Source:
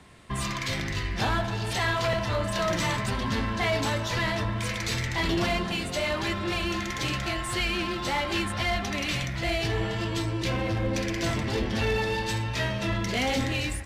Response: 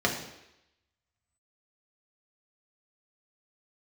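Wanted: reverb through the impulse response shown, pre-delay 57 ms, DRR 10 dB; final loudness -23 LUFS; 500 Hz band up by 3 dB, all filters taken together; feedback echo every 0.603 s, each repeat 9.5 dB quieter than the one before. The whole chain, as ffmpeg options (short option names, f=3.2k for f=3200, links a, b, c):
-filter_complex "[0:a]equalizer=f=500:t=o:g=4,aecho=1:1:603|1206|1809|2412:0.335|0.111|0.0365|0.012,asplit=2[a][b];[1:a]atrim=start_sample=2205,adelay=57[c];[b][c]afir=irnorm=-1:irlink=0,volume=-22.5dB[d];[a][d]amix=inputs=2:normalize=0,volume=3dB"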